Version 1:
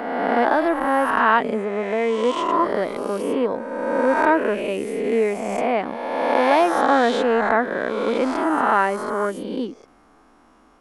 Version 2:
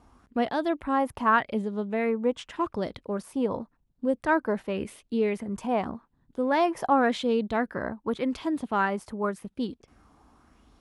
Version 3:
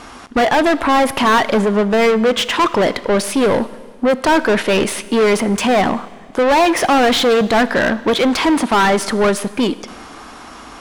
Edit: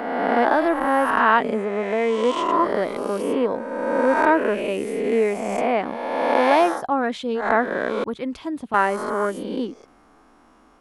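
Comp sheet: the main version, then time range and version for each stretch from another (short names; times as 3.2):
1
6.75–7.42 from 2, crossfade 0.16 s
8.04–8.74 from 2
not used: 3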